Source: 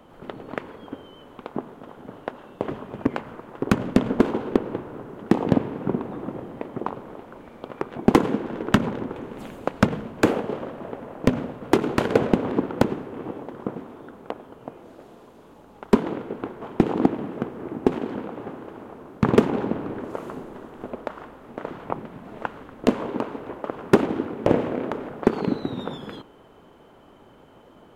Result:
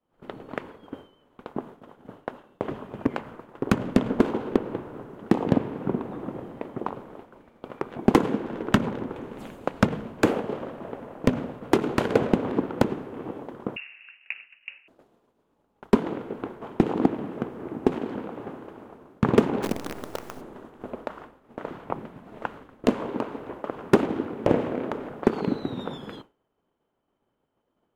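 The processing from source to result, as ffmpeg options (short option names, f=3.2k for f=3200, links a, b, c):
-filter_complex "[0:a]asettb=1/sr,asplit=3[a][b][c];[a]atrim=end=13.764[d];[b]atrim=start=13.76:end=14.88,asetpts=PTS-STARTPTS,afade=t=in:d=0.004:c=qsin,afade=t=out:st=1.116:d=0.004:c=qsin,lowpass=f=2.6k:t=q:w=0.5098,lowpass=f=2.6k:t=q:w=0.6013,lowpass=f=2.6k:t=q:w=0.9,lowpass=f=2.6k:t=q:w=2.563,afreqshift=-3000[e];[c]atrim=start=14.876[f];[d][e]acrossfade=d=0.004:c1=hsin:c2=qsin[g];[g][f]acrossfade=d=0.004:c1=qsin:c2=hsin,asplit=3[h][i][j];[h]afade=t=out:st=19.62:d=0.02[k];[i]acrusher=bits=5:dc=4:mix=0:aa=0.000001,afade=t=in:st=19.62:d=0.02,afade=t=out:st=20.4:d=0.02[l];[j]afade=t=in:st=20.4:d=0.02[m];[k][l][m]amix=inputs=3:normalize=0,agate=range=-33dB:threshold=-36dB:ratio=3:detection=peak,volume=-2dB"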